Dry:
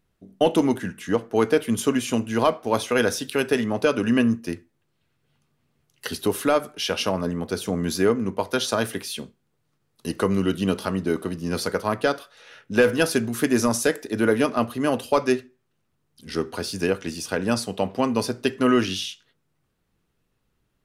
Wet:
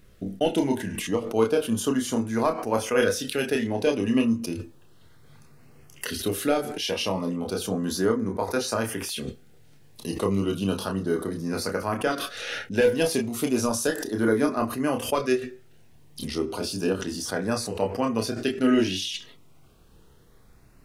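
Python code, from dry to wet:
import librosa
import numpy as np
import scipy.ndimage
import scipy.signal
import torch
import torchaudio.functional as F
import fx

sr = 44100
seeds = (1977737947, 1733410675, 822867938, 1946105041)

p1 = fx.chorus_voices(x, sr, voices=6, hz=0.11, base_ms=29, depth_ms=2.2, mix_pct=40)
p2 = fx.filter_lfo_notch(p1, sr, shape='saw_up', hz=0.33, low_hz=830.0, high_hz=4200.0, q=2.1)
p3 = fx.over_compress(p2, sr, threshold_db=-48.0, ratio=-1.0)
y = p2 + (p3 * librosa.db_to_amplitude(1.0))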